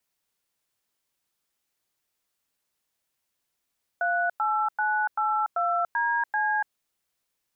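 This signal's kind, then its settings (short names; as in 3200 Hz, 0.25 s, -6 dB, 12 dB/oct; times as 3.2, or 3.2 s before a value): DTMF "38982DC", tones 0.288 s, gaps 0.1 s, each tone -25 dBFS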